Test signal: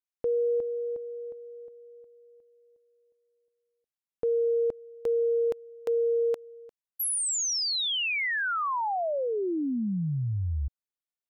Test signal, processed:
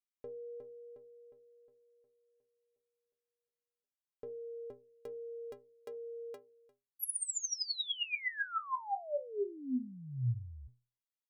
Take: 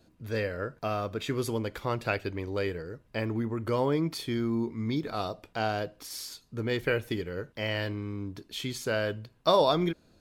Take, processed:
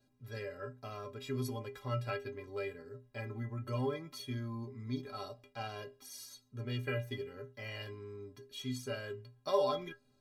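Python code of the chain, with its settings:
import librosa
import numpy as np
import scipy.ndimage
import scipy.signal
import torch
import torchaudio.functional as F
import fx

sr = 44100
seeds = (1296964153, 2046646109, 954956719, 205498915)

y = fx.stiff_resonator(x, sr, f0_hz=120.0, decay_s=0.35, stiffness=0.03)
y = F.gain(torch.from_numpy(y), 1.5).numpy()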